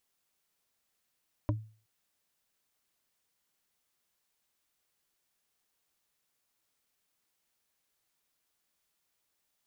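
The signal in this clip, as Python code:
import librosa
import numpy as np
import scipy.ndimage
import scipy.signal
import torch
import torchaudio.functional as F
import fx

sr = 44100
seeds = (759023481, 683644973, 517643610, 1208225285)

y = fx.strike_wood(sr, length_s=0.37, level_db=-24.0, body='bar', hz=109.0, decay_s=0.4, tilt_db=2.5, modes=4)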